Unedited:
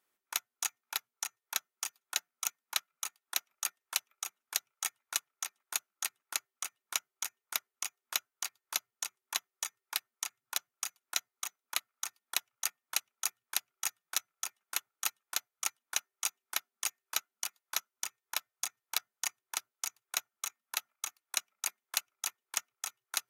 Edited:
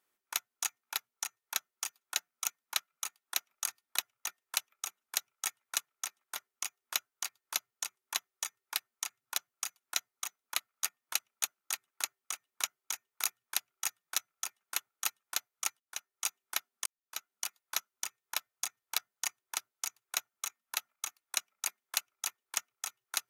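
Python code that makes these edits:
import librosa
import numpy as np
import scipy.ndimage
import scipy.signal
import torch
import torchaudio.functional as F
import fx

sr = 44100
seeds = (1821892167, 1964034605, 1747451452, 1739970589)

y = fx.edit(x, sr, fx.move(start_s=5.75, length_s=1.81, to_s=13.24),
    fx.move(start_s=12.04, length_s=0.61, to_s=3.66),
    fx.fade_in_from(start_s=15.8, length_s=0.48, floor_db=-21.0),
    fx.fade_in_span(start_s=16.86, length_s=0.47, curve='qua'), tone=tone)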